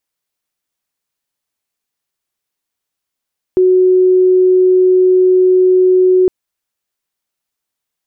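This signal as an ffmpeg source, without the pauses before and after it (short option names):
-f lavfi -i "aevalsrc='0.501*sin(2*PI*369*t)':d=2.71:s=44100"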